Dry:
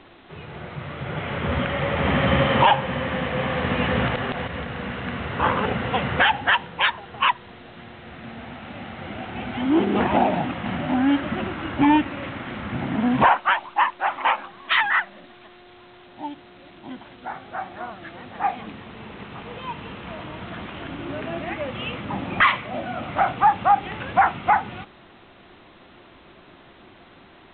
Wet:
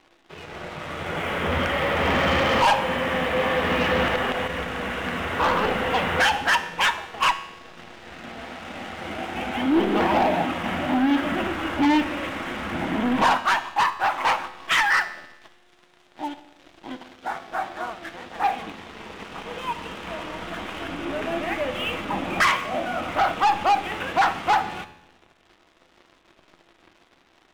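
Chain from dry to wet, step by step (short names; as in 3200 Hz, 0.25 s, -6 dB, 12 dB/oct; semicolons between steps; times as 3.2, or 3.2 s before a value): bell 130 Hz -14 dB 0.93 oct; sample leveller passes 3; resonator 85 Hz, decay 0.96 s, harmonics all, mix 60%; shoebox room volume 2900 m³, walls furnished, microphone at 0.62 m; gain -1 dB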